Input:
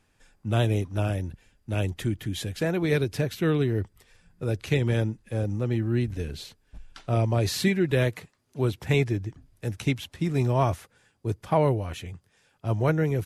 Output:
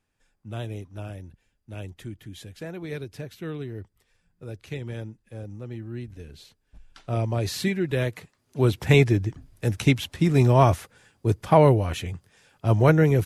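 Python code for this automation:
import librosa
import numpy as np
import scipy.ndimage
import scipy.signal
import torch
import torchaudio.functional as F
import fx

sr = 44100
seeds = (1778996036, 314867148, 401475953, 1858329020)

y = fx.gain(x, sr, db=fx.line((6.25, -10.0), (7.16, -2.0), (8.1, -2.0), (8.76, 6.0)))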